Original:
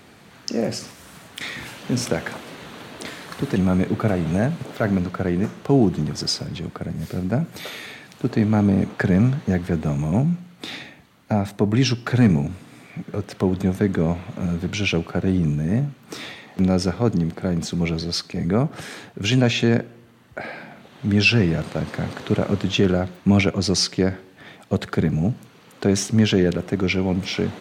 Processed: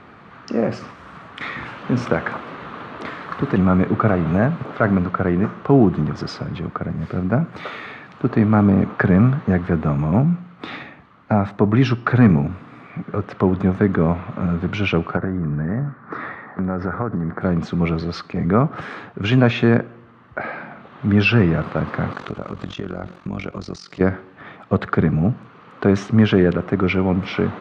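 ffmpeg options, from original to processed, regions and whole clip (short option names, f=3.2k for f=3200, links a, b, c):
-filter_complex "[0:a]asettb=1/sr,asplit=3[a][b][c];[a]atrim=end=15.174[d];[b]atrim=start=15.17:end=17.41,asetpts=PTS-STARTPTS,afade=t=in:d=0.004:c=qsin,afade=t=out:st=2.236:d=0.004:c=qsin,lowpass=f=5k:w=0.5412,lowpass=f=5k:w=1.3066,highshelf=f=2.2k:t=q:w=3:g=-8,acompressor=threshold=-21dB:ratio=10:attack=3.2:release=140:knee=1:detection=peak[e];[c]atrim=start=17.406[f];[d][e]acrossfade=d=0.004:c1=hsin:c2=qsin[g];[g][f]acrossfade=d=0.004:c1=qsin:c2=hsin,asettb=1/sr,asplit=3[h][i][j];[h]atrim=end=22.134[k];[i]atrim=start=22.13:end=24.01,asetpts=PTS-STARTPTS,afade=t=in:d=0.004:c=qsin,afade=t=out:st=1.876:d=0.004:c=qsin,bass=f=250:g=0,treble=f=4k:g=14,acompressor=threshold=-25dB:ratio=4:attack=3.2:release=140:knee=1:detection=peak,tremolo=f=45:d=0.857[l];[j]atrim=start=24.006[m];[k][l]acrossfade=d=0.004:c1=hsin:c2=qsin[n];[n][m]acrossfade=d=0.004:c1=qsin:c2=hsin,lowpass=2.3k,equalizer=f=1.2k:w=2.5:g=9.5,volume=3dB"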